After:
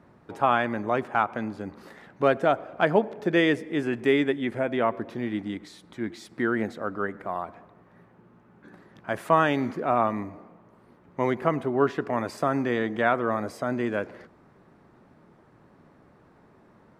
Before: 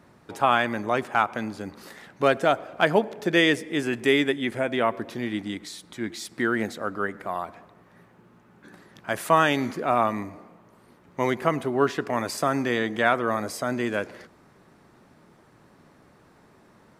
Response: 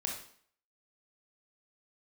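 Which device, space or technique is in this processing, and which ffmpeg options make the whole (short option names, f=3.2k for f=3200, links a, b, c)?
through cloth: -af "highshelf=f=3.1k:g=-14"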